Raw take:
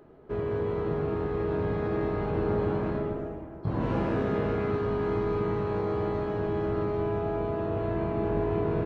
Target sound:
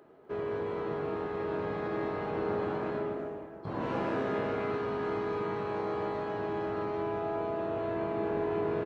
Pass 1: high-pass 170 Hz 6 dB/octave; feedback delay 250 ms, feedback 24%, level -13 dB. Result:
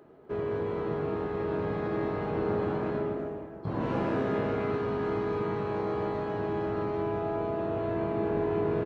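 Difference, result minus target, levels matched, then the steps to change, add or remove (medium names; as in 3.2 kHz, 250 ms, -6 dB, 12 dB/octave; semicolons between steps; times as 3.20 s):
125 Hz band +4.0 dB
change: high-pass 440 Hz 6 dB/octave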